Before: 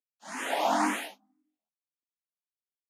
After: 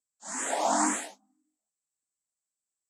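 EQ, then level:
low-pass with resonance 7,800 Hz, resonance Q 11
parametric band 2,800 Hz −9 dB 0.81 octaves
0.0 dB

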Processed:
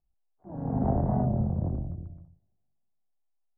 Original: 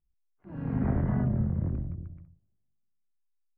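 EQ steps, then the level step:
low-pass with resonance 750 Hz, resonance Q 3.7
0.0 dB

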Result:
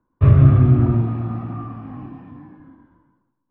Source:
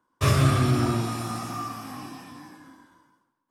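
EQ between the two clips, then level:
low-pass filter 2,900 Hz 24 dB per octave
spectral tilt −4.5 dB per octave
−3.5 dB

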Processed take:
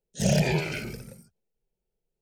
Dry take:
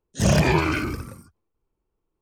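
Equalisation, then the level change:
phaser with its sweep stopped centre 300 Hz, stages 6
−2.5 dB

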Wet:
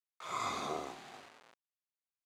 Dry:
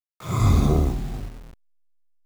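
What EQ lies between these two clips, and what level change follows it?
high-pass filter 770 Hz 12 dB per octave
high-frequency loss of the air 63 metres
notch filter 5,400 Hz, Q 20
−4.0 dB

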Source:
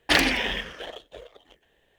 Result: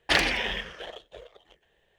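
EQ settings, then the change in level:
parametric band 270 Hz −15 dB 0.2 octaves
parametric band 16,000 Hz −11 dB 0.69 octaves
−2.0 dB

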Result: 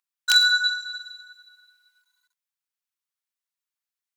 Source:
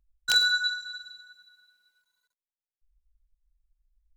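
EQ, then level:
high-pass filter 960 Hz 24 dB per octave
+5.0 dB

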